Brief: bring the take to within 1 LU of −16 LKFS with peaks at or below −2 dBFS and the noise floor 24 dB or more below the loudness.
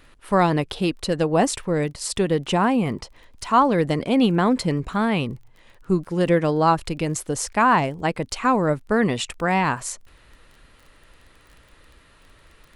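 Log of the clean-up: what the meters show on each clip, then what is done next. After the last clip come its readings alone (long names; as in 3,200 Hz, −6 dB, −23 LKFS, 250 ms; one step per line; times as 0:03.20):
crackle rate 22 per second; integrated loudness −21.5 LKFS; sample peak −5.5 dBFS; target loudness −16.0 LKFS
→ click removal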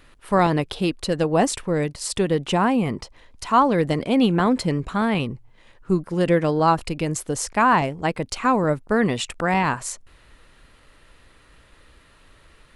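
crackle rate 0 per second; integrated loudness −21.5 LKFS; sample peak −5.5 dBFS; target loudness −16.0 LKFS
→ level +5.5 dB
brickwall limiter −2 dBFS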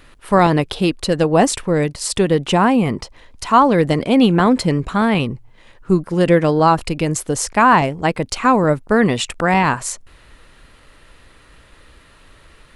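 integrated loudness −16.5 LKFS; sample peak −2.0 dBFS; background noise floor −49 dBFS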